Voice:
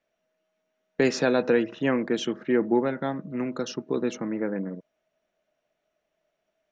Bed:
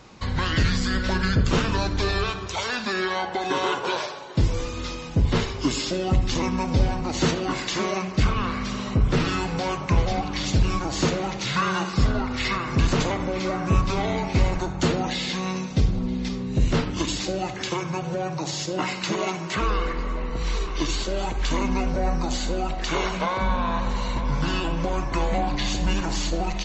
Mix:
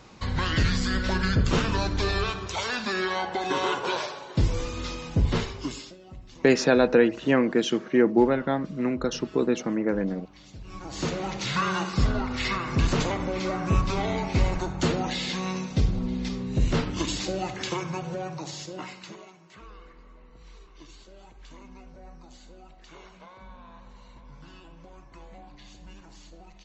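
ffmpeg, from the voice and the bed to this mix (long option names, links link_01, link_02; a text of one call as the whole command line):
ffmpeg -i stem1.wav -i stem2.wav -filter_complex "[0:a]adelay=5450,volume=3dB[link_01];[1:a]volume=19dB,afade=type=out:start_time=5.23:duration=0.73:silence=0.0841395,afade=type=in:start_time=10.64:duration=0.71:silence=0.0891251,afade=type=out:start_time=17.71:duration=1.57:silence=0.0891251[link_02];[link_01][link_02]amix=inputs=2:normalize=0" out.wav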